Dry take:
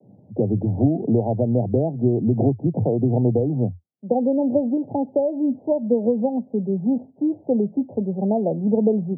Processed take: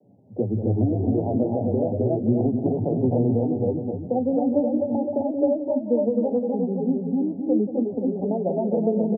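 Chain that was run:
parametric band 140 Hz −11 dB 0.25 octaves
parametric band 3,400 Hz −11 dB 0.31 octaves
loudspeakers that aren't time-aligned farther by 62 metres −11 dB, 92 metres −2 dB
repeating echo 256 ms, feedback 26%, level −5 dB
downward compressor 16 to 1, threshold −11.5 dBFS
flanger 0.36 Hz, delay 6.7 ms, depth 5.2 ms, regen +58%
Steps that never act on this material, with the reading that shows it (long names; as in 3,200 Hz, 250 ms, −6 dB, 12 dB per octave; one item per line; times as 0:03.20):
parametric band 3,400 Hz: nothing at its input above 910 Hz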